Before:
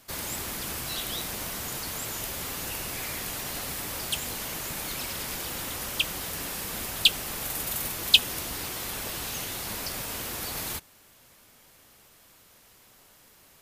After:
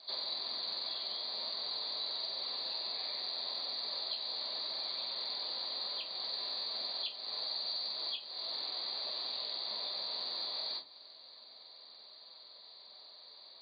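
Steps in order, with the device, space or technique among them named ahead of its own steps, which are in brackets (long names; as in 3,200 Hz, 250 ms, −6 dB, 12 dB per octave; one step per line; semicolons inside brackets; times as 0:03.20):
high-pass filter 290 Hz 6 dB per octave
hearing aid with frequency lowering (hearing-aid frequency compression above 3,200 Hz 4 to 1; downward compressor 4 to 1, threshold −36 dBFS, peak gain reduction 21 dB; loudspeaker in its box 300–7,000 Hz, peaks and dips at 660 Hz +10 dB, 1,000 Hz +6 dB, 1,500 Hz −5 dB, 2,800 Hz −5 dB, 4,100 Hz +10 dB)
rectangular room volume 140 cubic metres, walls furnished, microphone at 1.2 metres
level −8.5 dB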